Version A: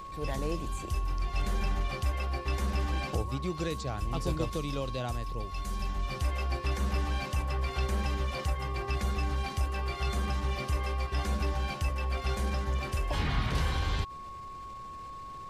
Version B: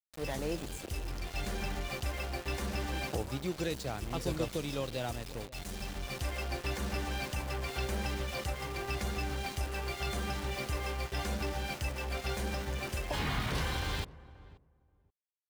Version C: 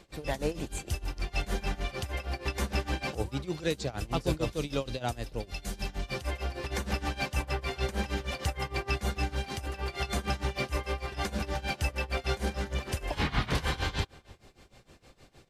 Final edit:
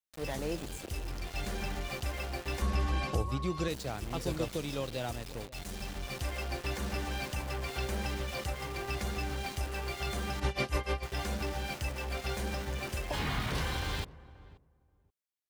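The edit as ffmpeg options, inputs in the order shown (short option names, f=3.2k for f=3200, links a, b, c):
-filter_complex "[1:a]asplit=3[a][b][c];[a]atrim=end=2.622[d];[0:a]atrim=start=2.618:end=3.682[e];[b]atrim=start=3.678:end=10.402[f];[2:a]atrim=start=10.398:end=11.032[g];[c]atrim=start=11.028[h];[d][e]acrossfade=d=0.004:c1=hsin:c2=hsin[i];[i][f]acrossfade=d=0.004:c1=hsin:c2=hsin[j];[j][g]acrossfade=d=0.004:c1=hsin:c2=hsin[k];[k][h]acrossfade=d=0.004:c1=hsin:c2=hsin"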